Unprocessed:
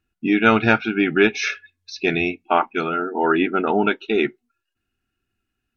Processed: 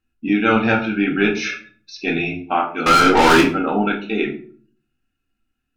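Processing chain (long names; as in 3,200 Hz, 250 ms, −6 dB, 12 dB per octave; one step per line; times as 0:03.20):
0:02.86–0:03.41: mid-hump overdrive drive 34 dB, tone 5,800 Hz, clips at −4 dBFS
rectangular room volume 380 cubic metres, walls furnished, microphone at 2.1 metres
level −4 dB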